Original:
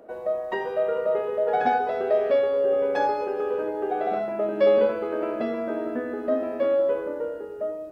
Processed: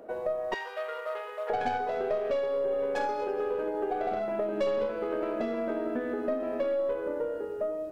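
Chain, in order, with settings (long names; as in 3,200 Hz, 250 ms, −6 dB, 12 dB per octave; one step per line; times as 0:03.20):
stylus tracing distortion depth 0.12 ms
0:00.54–0:01.50: high-pass filter 1,200 Hz 12 dB per octave
downward compressor 4 to 1, threshold −29 dBFS, peak gain reduction 12 dB
level +1 dB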